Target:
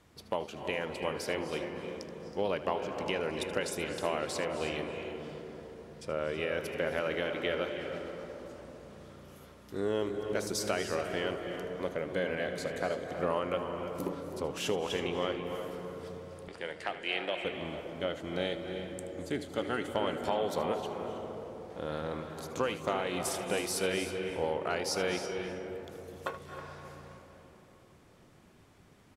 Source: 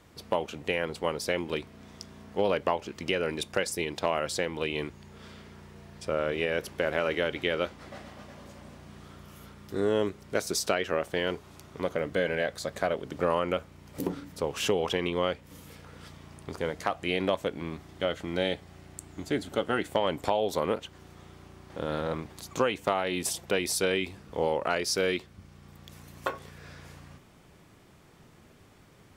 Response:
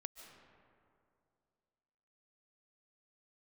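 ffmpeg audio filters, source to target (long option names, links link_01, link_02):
-filter_complex "[0:a]asettb=1/sr,asplit=3[link_01][link_02][link_03];[link_01]atrim=end=16.484[link_04];[link_02]atrim=start=16.48:end=17.45,asetpts=PTS-STARTPTS,afade=type=in:duration=0.004:curve=qsin,afade=type=out:start_time=0.966:duration=0.004:curve=qsin,highpass=frequency=250:width=0.5412,highpass=frequency=250:width=1.3066,equalizer=frequency=260:width_type=q:width=4:gain=-10,equalizer=frequency=440:width_type=q:width=4:gain=-6,equalizer=frequency=1100:width_type=q:width=4:gain=-9,equalizer=frequency=1800:width_type=q:width=4:gain=6,equalizer=frequency=2800:width_type=q:width=4:gain=7,equalizer=frequency=6400:width_type=q:width=4:gain=-9,lowpass=frequency=9300:width=0.5412,lowpass=frequency=9300:width=1.3066[link_05];[link_03]atrim=start=17.446[link_06];[link_04][link_05]acrossfade=duration=0.004:curve1=hsin:curve2=qsin[link_07];[link_07][link_06]acrossfade=duration=0.004:curve1=qsin:curve2=hsin,aecho=1:1:77|321:0.178|0.188[link_08];[1:a]atrim=start_sample=2205,asetrate=25137,aresample=44100[link_09];[link_08][link_09]afir=irnorm=-1:irlink=0,volume=-3dB"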